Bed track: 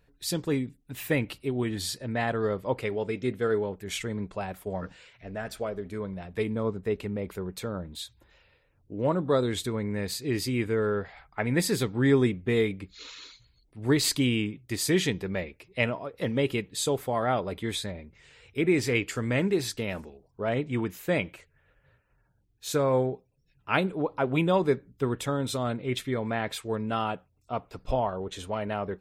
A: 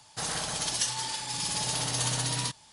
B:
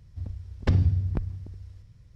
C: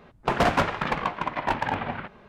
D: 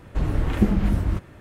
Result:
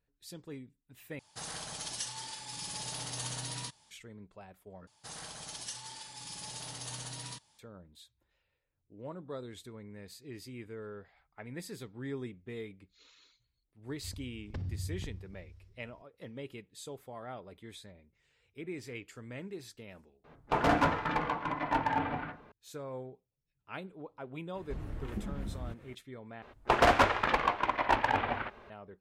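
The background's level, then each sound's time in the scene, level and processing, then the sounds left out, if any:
bed track −17.5 dB
0:01.19: overwrite with A −9.5 dB
0:04.87: overwrite with A −13 dB
0:13.87: mix in B −11 dB + brickwall limiter −20 dBFS
0:20.24: overwrite with C −8 dB + feedback delay network reverb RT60 0.31 s, low-frequency decay 1.05×, high-frequency decay 0.25×, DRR 1 dB
0:24.55: mix in D −9.5 dB + downward compressor 1.5 to 1, threshold −40 dBFS
0:26.42: overwrite with C −1 dB + parametric band 170 Hz −14 dB 0.67 octaves

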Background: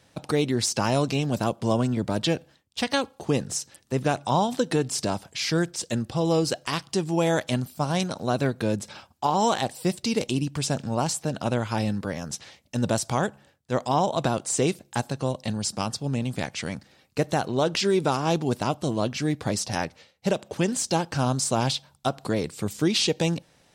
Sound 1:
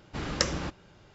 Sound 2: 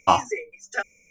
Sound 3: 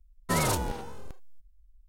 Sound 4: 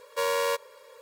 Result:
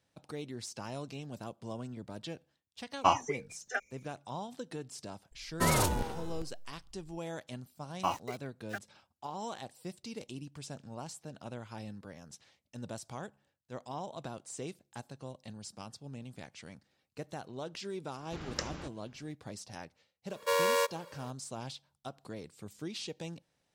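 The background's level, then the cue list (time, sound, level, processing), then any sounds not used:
background −18 dB
0:02.97: mix in 2 −7.5 dB
0:05.31: mix in 3 −1 dB
0:07.96: mix in 2 −14 dB + centre clipping without the shift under −30 dBFS
0:18.18: mix in 1 −10 dB
0:20.30: mix in 4 −1.5 dB + high-pass filter 170 Hz

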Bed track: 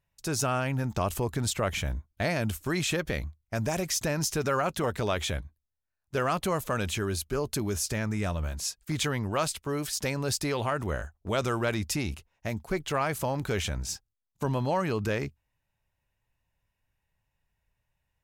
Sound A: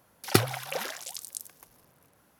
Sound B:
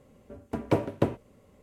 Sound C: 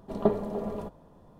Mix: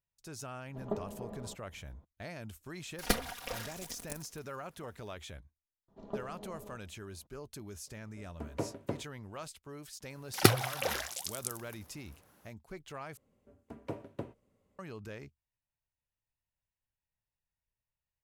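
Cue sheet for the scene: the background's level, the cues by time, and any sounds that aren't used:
bed track −16 dB
0:00.66: mix in C −12 dB + low-pass filter 4,000 Hz
0:02.75: mix in A −5.5 dB + lower of the sound and its delayed copy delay 4.2 ms
0:05.88: mix in C −15.5 dB + downsampling to 16,000 Hz
0:07.87: mix in B −11.5 dB
0:10.10: mix in A −0.5 dB
0:13.17: overwrite with B −15.5 dB

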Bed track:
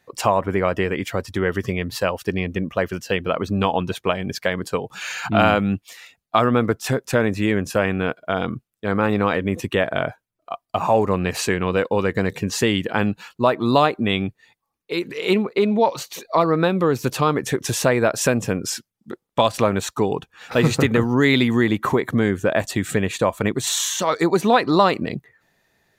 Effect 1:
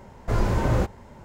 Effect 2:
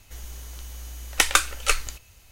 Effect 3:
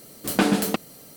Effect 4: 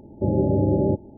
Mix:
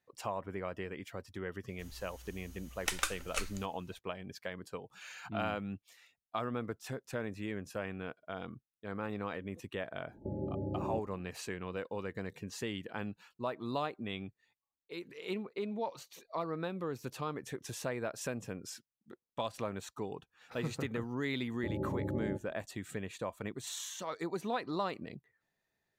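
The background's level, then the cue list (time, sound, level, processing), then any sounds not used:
bed track −19.5 dB
0:01.68: mix in 2 −14.5 dB
0:10.04: mix in 4 −17.5 dB + camcorder AGC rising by 34 dB per second
0:21.42: mix in 4 −16.5 dB
not used: 1, 3

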